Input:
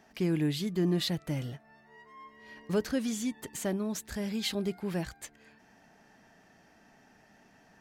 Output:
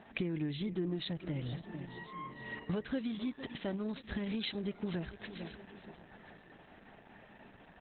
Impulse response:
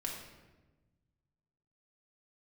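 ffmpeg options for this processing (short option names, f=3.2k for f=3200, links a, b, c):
-filter_complex "[0:a]asettb=1/sr,asplit=3[a][b][c];[a]atrim=end=2.624[d];[b]atrim=start=2.62:end=4.75,asetpts=PTS-STARTPTS,afade=t=in:d=0.004:c=qsin,afade=t=out:st=2.126:d=0.004:c=qsin,highshelf=f=2.1k:g=6[e];[c]atrim=start=4.746[f];[d][e]acrossfade=d=0.004:c1=hsin:c2=qsin[g];[g][f]acrossfade=d=0.004:c1=qsin:c2=hsin,asplit=2[h][i];[i]aecho=0:1:450|900|1350:0.119|0.038|0.0122[j];[h][j]amix=inputs=2:normalize=0,acompressor=threshold=-40dB:ratio=5,asettb=1/sr,asplit=3[k][l][m];[k]atrim=end=0.734[n];[l]atrim=start=0.73:end=1.13,asetpts=PTS-STARTPTS,afade=t=in:d=0.004:c=qsin,afade=t=out:st=0.396:d=0.004:c=qsin,highpass=f=61:p=1[o];[m]atrim=start=1.126[p];[n][o]acrossfade=d=0.004:c1=hsin:c2=qsin[q];[q][p]acrossfade=d=0.004:c1=qsin:c2=hsin,asplit=2[r][s];[s]aecho=0:1:1036:0.126[t];[r][t]amix=inputs=2:normalize=0,volume=6.5dB" -ar 48000 -c:a libopus -b:a 8k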